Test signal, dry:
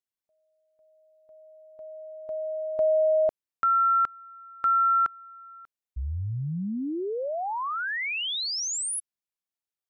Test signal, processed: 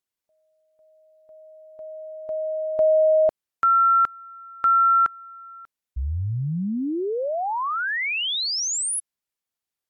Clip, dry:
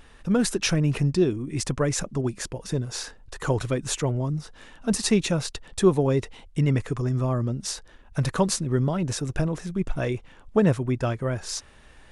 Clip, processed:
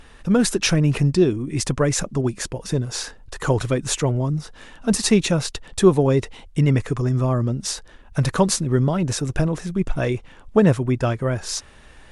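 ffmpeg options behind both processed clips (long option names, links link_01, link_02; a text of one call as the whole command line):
ffmpeg -i in.wav -af "volume=5dB" -ar 44100 -c:a libmp3lame -b:a 80k out.mp3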